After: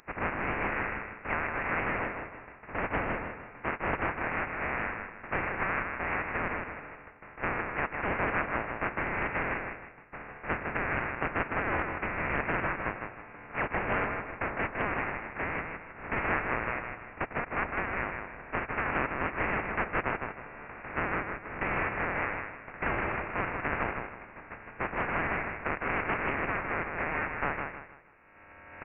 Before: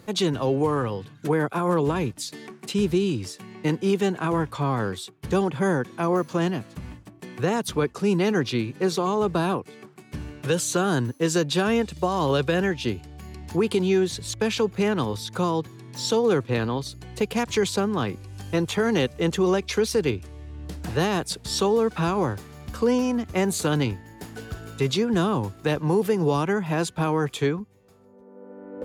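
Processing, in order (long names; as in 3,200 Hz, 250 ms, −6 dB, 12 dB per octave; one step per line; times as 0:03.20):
compressing power law on the bin magnitudes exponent 0.16
high-pass filter 980 Hz 12 dB per octave
on a send: repeating echo 157 ms, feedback 35%, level −5 dB
on the sum: voice inversion scrambler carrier 3,100 Hz
highs frequency-modulated by the lows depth 0.18 ms
level −2 dB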